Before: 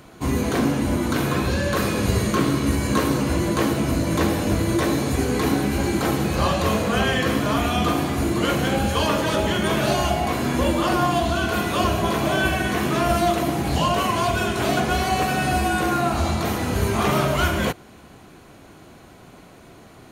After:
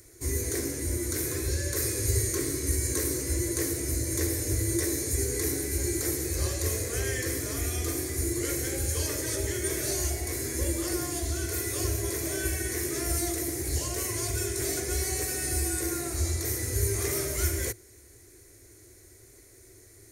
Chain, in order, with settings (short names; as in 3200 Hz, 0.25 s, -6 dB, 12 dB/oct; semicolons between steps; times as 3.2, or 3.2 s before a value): EQ curve 110 Hz 0 dB, 180 Hz -28 dB, 370 Hz 0 dB, 810 Hz -21 dB, 1300 Hz -17 dB, 2000 Hz -1 dB, 2900 Hz -17 dB, 5500 Hz +6 dB, 9300 Hz +11 dB, 15000 Hz +8 dB; gain -4 dB